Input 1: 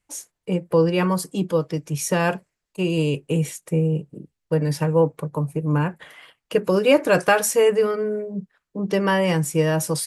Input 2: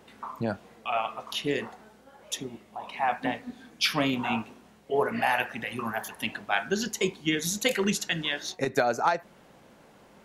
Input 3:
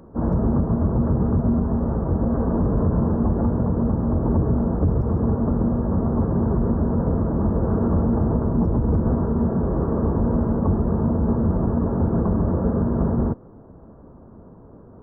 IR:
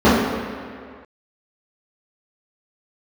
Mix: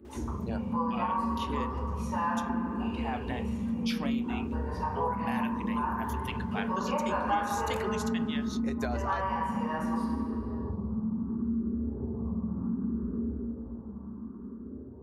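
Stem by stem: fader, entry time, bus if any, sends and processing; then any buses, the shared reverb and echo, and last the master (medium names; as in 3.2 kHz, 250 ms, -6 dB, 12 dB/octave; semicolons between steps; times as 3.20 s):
-13.5 dB, 0.00 s, send -3 dB, ladder high-pass 890 Hz, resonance 70%
0.0 dB, 0.05 s, no send, none
-12.5 dB, 0.00 s, send -19 dB, high-order bell 600 Hz -9 dB 1 oct; compression, threshold -24 dBFS, peak gain reduction 9 dB; barber-pole phaser +0.68 Hz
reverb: on, RT60 2.0 s, pre-delay 3 ms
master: compression 2.5:1, threshold -34 dBFS, peak gain reduction 17.5 dB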